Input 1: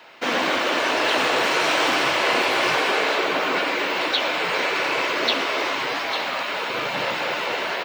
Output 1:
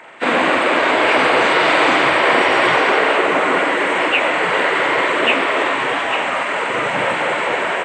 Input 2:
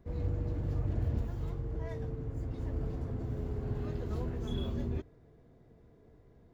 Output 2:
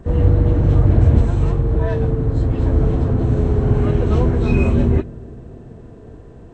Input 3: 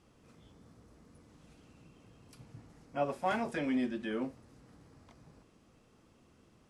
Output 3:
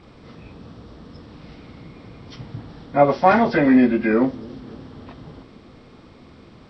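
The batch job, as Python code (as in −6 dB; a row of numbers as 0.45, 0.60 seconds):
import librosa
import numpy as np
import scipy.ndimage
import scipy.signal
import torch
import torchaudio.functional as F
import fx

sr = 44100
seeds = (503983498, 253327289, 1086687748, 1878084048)

y = fx.freq_compress(x, sr, knee_hz=1400.0, ratio=1.5)
y = fx.echo_bbd(y, sr, ms=286, stages=1024, feedback_pct=64, wet_db=-21.5)
y = y * 10.0 ** (-1.5 / 20.0) / np.max(np.abs(y))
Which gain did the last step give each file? +7.5, +20.0, +18.0 decibels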